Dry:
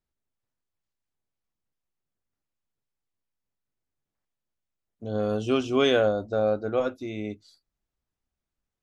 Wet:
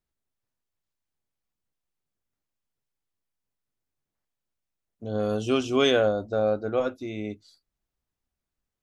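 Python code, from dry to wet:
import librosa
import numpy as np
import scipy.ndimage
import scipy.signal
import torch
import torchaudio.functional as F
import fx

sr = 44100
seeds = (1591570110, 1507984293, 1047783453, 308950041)

y = fx.high_shelf(x, sr, hz=fx.line((5.19, 5900.0), (5.9, 4700.0)), db=7.5, at=(5.19, 5.9), fade=0.02)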